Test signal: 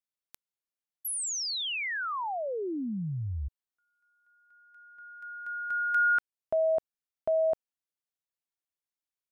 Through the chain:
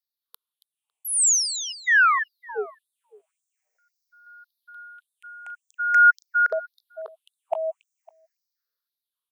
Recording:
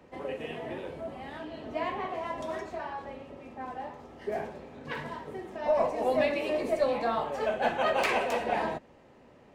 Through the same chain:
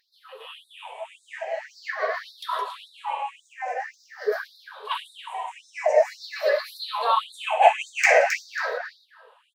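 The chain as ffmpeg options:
ffmpeg -i in.wav -filter_complex "[0:a]afftfilt=real='re*pow(10,20/40*sin(2*PI*(0.59*log(max(b,1)*sr/1024/100)/log(2)-(-0.46)*(pts-256)/sr)))':imag='im*pow(10,20/40*sin(2*PI*(0.59*log(max(b,1)*sr/1024/100)/log(2)-(-0.46)*(pts-256)/sr)))':win_size=1024:overlap=0.75,bass=frequency=250:gain=-13,treble=frequency=4000:gain=0,dynaudnorm=framelen=270:gausssize=9:maxgain=9dB,aeval=exprs='val(0)+0.00282*(sin(2*PI*60*n/s)+sin(2*PI*2*60*n/s)/2+sin(2*PI*3*60*n/s)/3+sin(2*PI*4*60*n/s)/4+sin(2*PI*5*60*n/s)/5)':channel_layout=same,asplit=2[link_01][link_02];[link_02]adelay=277,lowpass=frequency=3500:poles=1,volume=-6.5dB,asplit=2[link_03][link_04];[link_04]adelay=277,lowpass=frequency=3500:poles=1,volume=0.15,asplit=2[link_05][link_06];[link_06]adelay=277,lowpass=frequency=3500:poles=1,volume=0.15[link_07];[link_03][link_05][link_07]amix=inputs=3:normalize=0[link_08];[link_01][link_08]amix=inputs=2:normalize=0,afftfilt=real='re*gte(b*sr/1024,390*pow(3600/390,0.5+0.5*sin(2*PI*1.8*pts/sr)))':imag='im*gte(b*sr/1024,390*pow(3600/390,0.5+0.5*sin(2*PI*1.8*pts/sr)))':win_size=1024:overlap=0.75,volume=-1dB" out.wav

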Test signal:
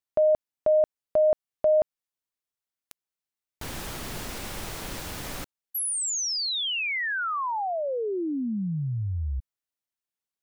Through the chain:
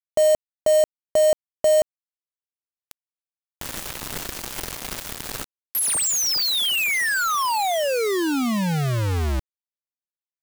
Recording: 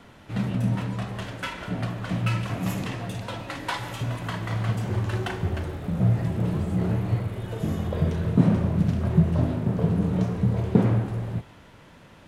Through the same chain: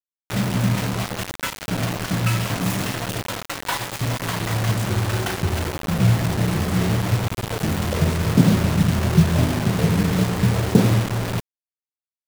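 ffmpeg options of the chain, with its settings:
ffmpeg -i in.wav -af "acrusher=bits=4:mix=0:aa=0.000001,volume=4dB" out.wav

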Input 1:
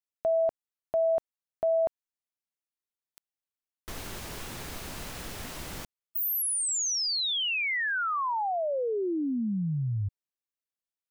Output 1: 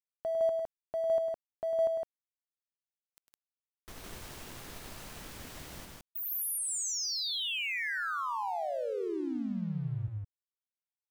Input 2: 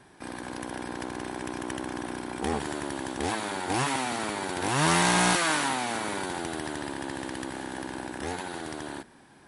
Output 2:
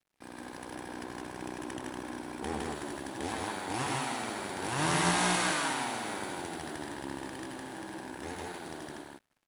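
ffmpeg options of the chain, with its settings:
ffmpeg -i in.wav -af "aeval=exprs='sgn(val(0))*max(abs(val(0))-0.00335,0)':channel_layout=same,aecho=1:1:102|160.3:0.398|0.794,volume=-7dB" out.wav

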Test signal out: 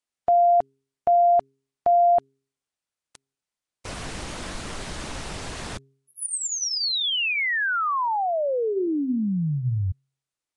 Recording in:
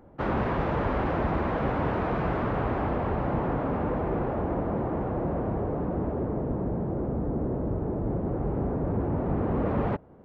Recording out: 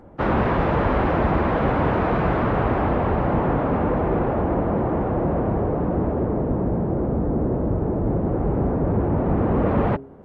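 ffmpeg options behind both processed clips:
ffmpeg -i in.wav -af "bandreject=frequency=135.4:width_type=h:width=4,bandreject=frequency=270.8:width_type=h:width=4,bandreject=frequency=406.2:width_type=h:width=4,volume=7dB" -ar 22050 -c:a nellymoser out.flv

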